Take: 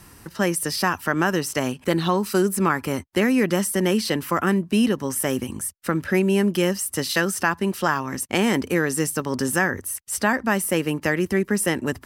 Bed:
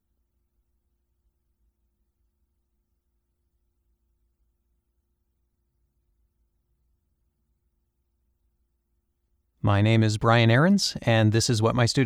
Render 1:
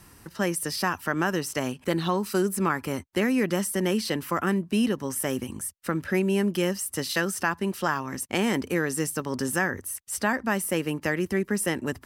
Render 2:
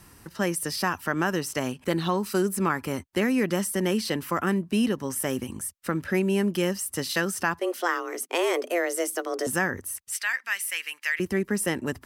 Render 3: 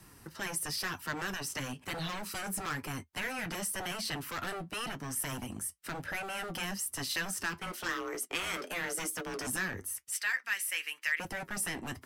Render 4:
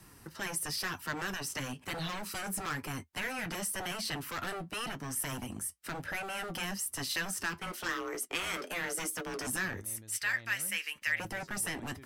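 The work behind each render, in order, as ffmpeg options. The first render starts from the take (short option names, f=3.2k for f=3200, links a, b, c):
-af "volume=-4.5dB"
-filter_complex "[0:a]asettb=1/sr,asplit=3[a][b][c];[a]atrim=end=7.594[d];[b]atrim=start=7.59:end=9.47,asetpts=PTS-STARTPTS,afade=t=in:d=0.004:c=qsin,afade=t=out:st=1.876:d=0.004:c=qsin,afreqshift=170[e];[c]atrim=start=9.466[f];[d][e]acrossfade=d=0.004:c1=hsin:c2=qsin[g];[g][f]acrossfade=d=0.004:c1=qsin:c2=hsin,asettb=1/sr,asplit=3[h][i][j];[h]atrim=end=10.124[k];[i]atrim=start=10.12:end=11.2,asetpts=PTS-STARTPTS,afade=t=in:d=0.004:c=qsin,afade=t=out:st=1.076:d=0.004:c=qsin,highpass=f=2.1k:t=q:w=2[l];[j]atrim=start=11.196[m];[k][l]acrossfade=d=0.004:c1=hsin:c2=qsin[n];[n][m]acrossfade=d=0.004:c1=qsin:c2=hsin"
-filter_complex "[0:a]acrossover=split=100|1400|4800[a][b][c][d];[b]aeval=exprs='0.0299*(abs(mod(val(0)/0.0299+3,4)-2)-1)':c=same[e];[a][e][c][d]amix=inputs=4:normalize=0,flanger=delay=6.3:depth=3.9:regen=-61:speed=0.98:shape=sinusoidal"
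-filter_complex "[1:a]volume=-32.5dB[a];[0:a][a]amix=inputs=2:normalize=0"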